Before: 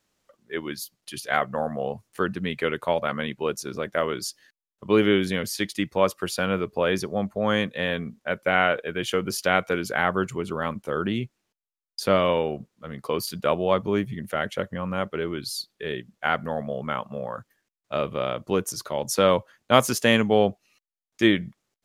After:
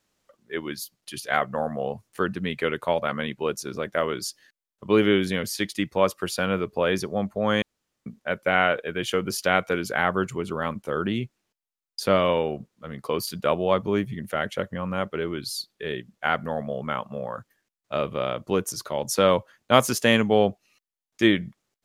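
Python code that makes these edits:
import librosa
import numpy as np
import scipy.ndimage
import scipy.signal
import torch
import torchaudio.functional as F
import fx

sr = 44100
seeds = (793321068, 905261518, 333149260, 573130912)

y = fx.edit(x, sr, fx.room_tone_fill(start_s=7.62, length_s=0.44), tone=tone)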